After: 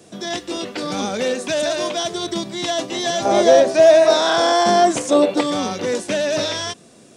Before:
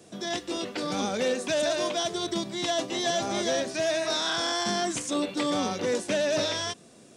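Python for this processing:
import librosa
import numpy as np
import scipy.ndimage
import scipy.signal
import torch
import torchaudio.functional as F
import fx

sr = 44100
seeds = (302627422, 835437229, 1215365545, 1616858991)

y = fx.peak_eq(x, sr, hz=600.0, db=12.5, octaves=1.7, at=(3.25, 5.41))
y = F.gain(torch.from_numpy(y), 5.5).numpy()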